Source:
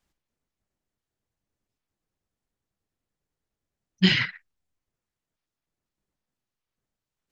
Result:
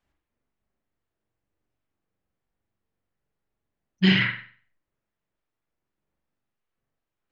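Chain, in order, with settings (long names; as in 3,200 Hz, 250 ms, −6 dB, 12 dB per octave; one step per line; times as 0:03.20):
bass and treble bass −2 dB, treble −11 dB
convolution reverb, pre-delay 42 ms, DRR 0 dB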